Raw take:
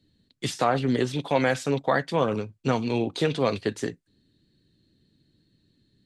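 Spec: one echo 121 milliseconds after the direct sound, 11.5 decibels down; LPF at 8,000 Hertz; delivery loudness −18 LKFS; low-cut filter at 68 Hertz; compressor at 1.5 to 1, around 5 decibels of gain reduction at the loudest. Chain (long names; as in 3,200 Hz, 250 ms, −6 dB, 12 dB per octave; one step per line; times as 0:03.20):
high-pass filter 68 Hz
low-pass filter 8,000 Hz
downward compressor 1.5 to 1, threshold −32 dBFS
single-tap delay 121 ms −11.5 dB
level +12.5 dB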